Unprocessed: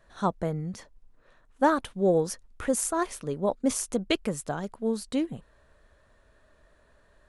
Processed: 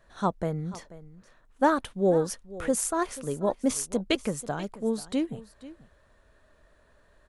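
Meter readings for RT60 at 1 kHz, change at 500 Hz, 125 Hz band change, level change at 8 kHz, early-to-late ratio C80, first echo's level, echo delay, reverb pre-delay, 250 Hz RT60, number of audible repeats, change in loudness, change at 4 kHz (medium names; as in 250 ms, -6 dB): no reverb, 0.0 dB, 0.0 dB, 0.0 dB, no reverb, -17.5 dB, 486 ms, no reverb, no reverb, 1, 0.0 dB, 0.0 dB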